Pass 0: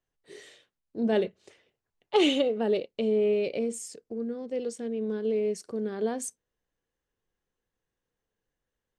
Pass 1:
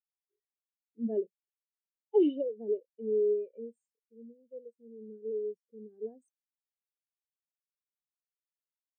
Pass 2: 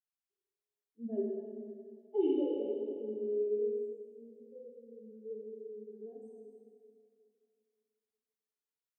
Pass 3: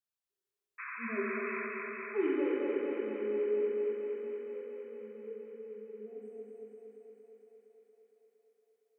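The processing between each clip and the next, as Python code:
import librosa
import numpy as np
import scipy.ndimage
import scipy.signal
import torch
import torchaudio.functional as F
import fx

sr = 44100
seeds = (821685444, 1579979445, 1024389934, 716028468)

y1 = fx.spectral_expand(x, sr, expansion=2.5)
y1 = y1 * 10.0 ** (-4.0 / 20.0)
y2 = fx.rev_plate(y1, sr, seeds[0], rt60_s=2.4, hf_ratio=0.85, predelay_ms=0, drr_db=-4.5)
y2 = y2 * 10.0 ** (-8.5 / 20.0)
y3 = fx.spec_paint(y2, sr, seeds[1], shape='noise', start_s=0.78, length_s=0.89, low_hz=980.0, high_hz=2600.0, level_db=-41.0)
y3 = fx.echo_thinned(y3, sr, ms=231, feedback_pct=81, hz=200.0, wet_db=-3)
y3 = y3 * 10.0 ** (-1.5 / 20.0)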